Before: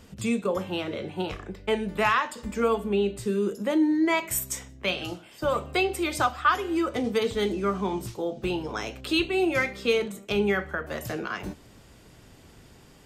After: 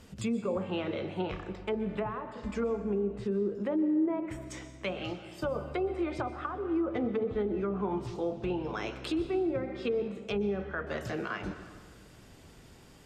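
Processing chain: low-pass that closes with the level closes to 530 Hz, closed at -20.5 dBFS; peak limiter -21 dBFS, peak gain reduction 5 dB; plate-style reverb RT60 1.7 s, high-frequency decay 0.65×, pre-delay 110 ms, DRR 11 dB; trim -2.5 dB

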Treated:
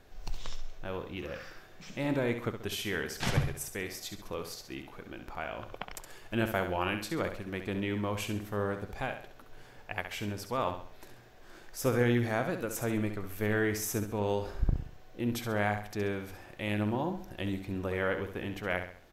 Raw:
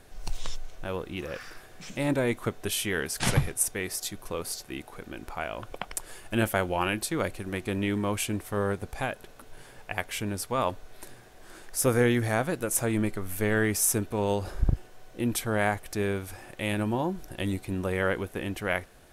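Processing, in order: peaking EQ 9.6 kHz -14.5 dB 0.52 oct; feedback delay 67 ms, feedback 39%, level -8.5 dB; trim -4.5 dB

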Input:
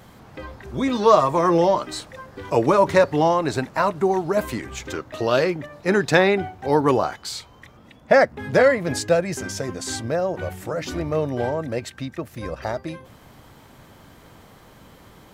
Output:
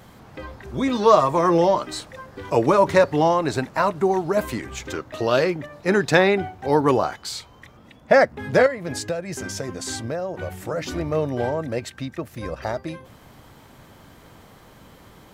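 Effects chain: 8.66–10.53 s: compression 4:1, threshold -25 dBFS, peak gain reduction 11 dB

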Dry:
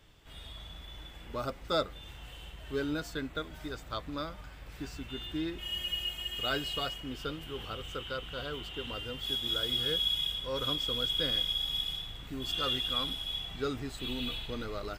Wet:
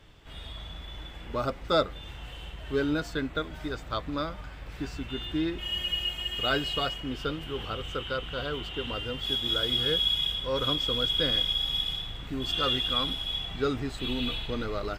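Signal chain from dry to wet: treble shelf 6.7 kHz -10.5 dB; trim +6 dB

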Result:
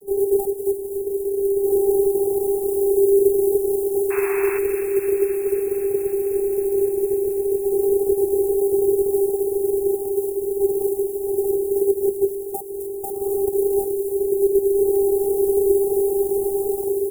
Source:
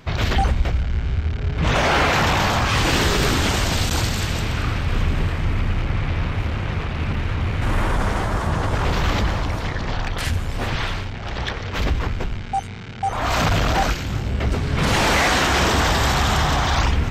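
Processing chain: in parallel at +2 dB: gain riding within 4 dB 0.5 s; on the sum: vocoder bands 32, saw 396 Hz; treble shelf 4.2 kHz -8.5 dB; comb 2.2 ms, depth 31%; compression 2.5:1, threshold -16 dBFS, peak gain reduction 7.5 dB; companded quantiser 4-bit; inverse Chebyshev band-stop 1.6–3.4 kHz, stop band 80 dB; painted sound noise, 4.10–4.59 s, 700–2700 Hz -34 dBFS; on a send: feedback echo behind a high-pass 260 ms, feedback 76%, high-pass 1.7 kHz, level -7.5 dB; on the sum: trim +2 dB

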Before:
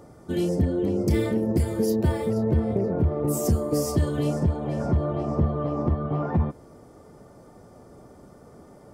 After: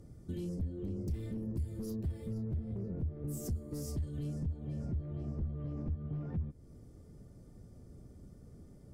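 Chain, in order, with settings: sine folder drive 7 dB, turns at -10 dBFS; amplifier tone stack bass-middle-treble 10-0-1; compression 2.5:1, threshold -38 dBFS, peak gain reduction 12 dB

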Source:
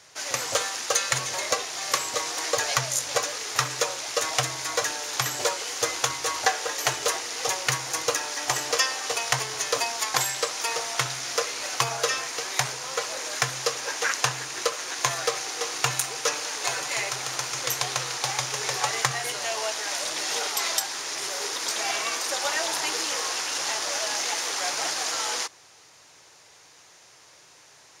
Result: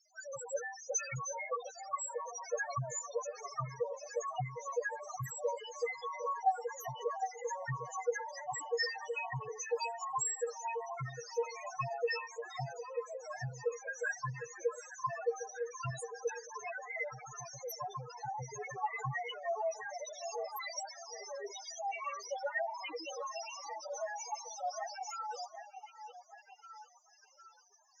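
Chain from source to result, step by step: loudest bins only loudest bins 2; repeats whose band climbs or falls 755 ms, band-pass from 690 Hz, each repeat 0.7 oct, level -7.5 dB; trim -1 dB

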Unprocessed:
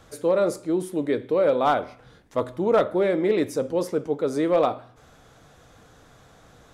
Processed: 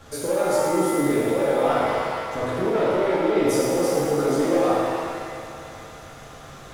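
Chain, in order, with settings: waveshaping leveller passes 1; peak limiter -24.5 dBFS, peak gain reduction 13 dB; thinning echo 111 ms, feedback 82%, high-pass 160 Hz, level -9.5 dB; pitch-shifted reverb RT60 1.4 s, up +7 st, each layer -8 dB, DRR -6 dB; trim +1.5 dB

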